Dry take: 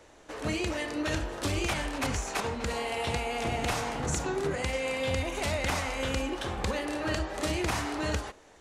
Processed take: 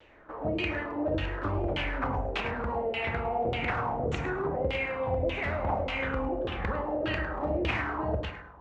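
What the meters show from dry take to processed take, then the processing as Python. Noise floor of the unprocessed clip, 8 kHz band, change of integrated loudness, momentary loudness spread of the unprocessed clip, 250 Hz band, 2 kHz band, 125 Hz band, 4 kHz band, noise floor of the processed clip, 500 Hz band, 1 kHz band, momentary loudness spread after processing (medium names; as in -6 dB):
-55 dBFS, under -20 dB, +0.5 dB, 3 LU, -0.5 dB, +0.5 dB, +0.5 dB, -4.5 dB, -48 dBFS, +2.0 dB, +2.0 dB, 3 LU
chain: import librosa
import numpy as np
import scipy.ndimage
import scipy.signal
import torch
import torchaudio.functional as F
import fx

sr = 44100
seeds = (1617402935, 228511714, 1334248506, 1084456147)

p1 = fx.low_shelf(x, sr, hz=410.0, db=4.0)
p2 = p1 + fx.echo_feedback(p1, sr, ms=105, feedback_pct=33, wet_db=-7.0, dry=0)
p3 = fx.rev_spring(p2, sr, rt60_s=1.2, pass_ms=(43,), chirp_ms=80, drr_db=9.5)
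p4 = fx.filter_lfo_lowpass(p3, sr, shape='saw_down', hz=1.7, low_hz=480.0, high_hz=3200.0, q=3.5)
p5 = fx.vibrato(p4, sr, rate_hz=0.9, depth_cents=35.0)
y = F.gain(torch.from_numpy(p5), -5.0).numpy()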